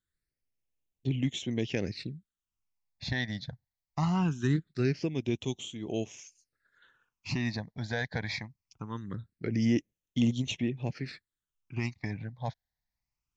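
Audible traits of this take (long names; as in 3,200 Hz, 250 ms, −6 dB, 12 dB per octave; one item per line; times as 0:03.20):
phaser sweep stages 8, 0.22 Hz, lowest notch 360–1,500 Hz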